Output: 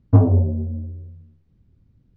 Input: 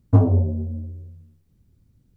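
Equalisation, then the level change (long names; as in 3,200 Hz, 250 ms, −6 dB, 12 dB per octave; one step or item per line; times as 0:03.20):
high-frequency loss of the air 200 metres
+2.0 dB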